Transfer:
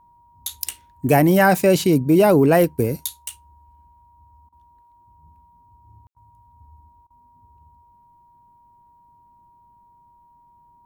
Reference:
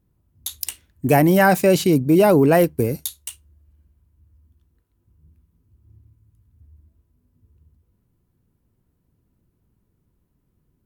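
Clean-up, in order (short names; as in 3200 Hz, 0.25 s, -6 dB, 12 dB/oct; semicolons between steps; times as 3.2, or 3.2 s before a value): notch 950 Hz, Q 30; room tone fill 6.07–6.15; interpolate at 4.49/6.13/7.07, 33 ms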